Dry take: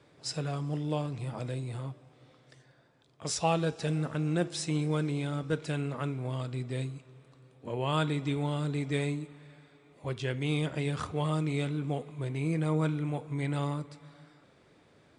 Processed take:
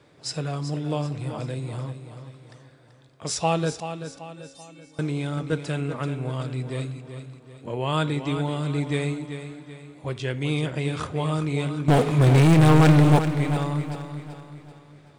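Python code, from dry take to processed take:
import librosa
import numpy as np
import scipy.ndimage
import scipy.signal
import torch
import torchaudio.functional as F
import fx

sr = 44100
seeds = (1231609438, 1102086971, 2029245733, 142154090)

y = fx.stiff_resonator(x, sr, f0_hz=270.0, decay_s=0.68, stiffness=0.008, at=(3.8, 4.99))
y = fx.leveller(y, sr, passes=5, at=(11.88, 13.19))
y = fx.echo_feedback(y, sr, ms=384, feedback_pct=44, wet_db=-10.0)
y = F.gain(torch.from_numpy(y), 4.5).numpy()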